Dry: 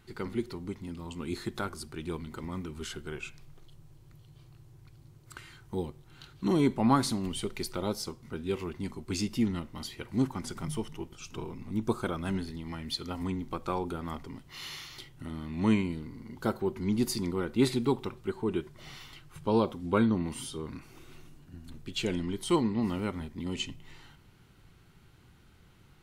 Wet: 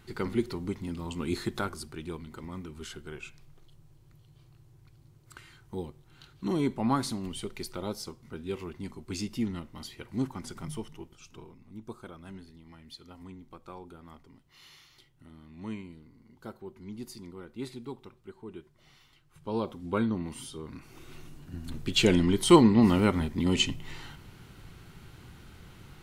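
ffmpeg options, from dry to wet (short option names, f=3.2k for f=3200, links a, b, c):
-af "volume=26dB,afade=t=out:st=1.33:d=0.83:silence=0.446684,afade=t=out:st=10.72:d=0.89:silence=0.316228,afade=t=in:st=19.25:d=0.52:silence=0.316228,afade=t=in:st=20.69:d=1.17:silence=0.251189"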